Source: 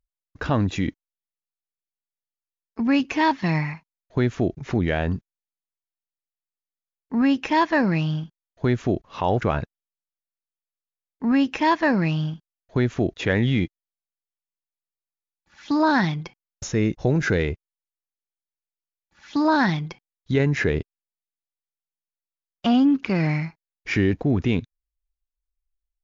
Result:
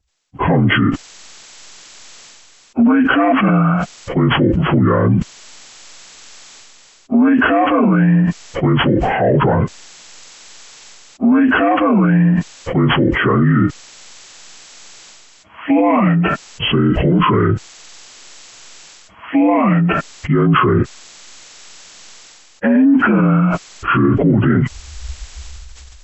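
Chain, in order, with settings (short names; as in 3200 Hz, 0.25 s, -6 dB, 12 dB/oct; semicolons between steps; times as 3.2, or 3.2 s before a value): inharmonic rescaling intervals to 77%; maximiser +20.5 dB; sustainer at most 20 dB/s; gain -5 dB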